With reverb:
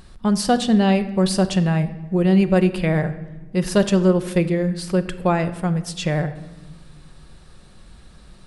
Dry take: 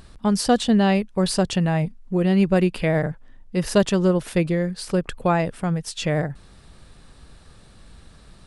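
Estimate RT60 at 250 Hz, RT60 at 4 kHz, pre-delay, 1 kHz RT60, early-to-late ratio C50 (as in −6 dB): 2.0 s, 0.80 s, 5 ms, 1.1 s, 13.5 dB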